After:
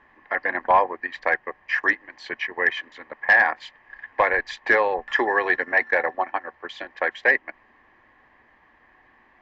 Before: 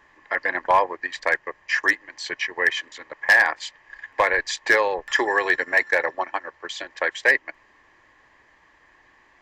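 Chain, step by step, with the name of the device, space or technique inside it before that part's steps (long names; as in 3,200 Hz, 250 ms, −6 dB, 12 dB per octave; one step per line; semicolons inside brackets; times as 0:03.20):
inside a cardboard box (low-pass filter 2,600 Hz 12 dB per octave; hollow resonant body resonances 230/750 Hz, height 9 dB, ringing for 100 ms)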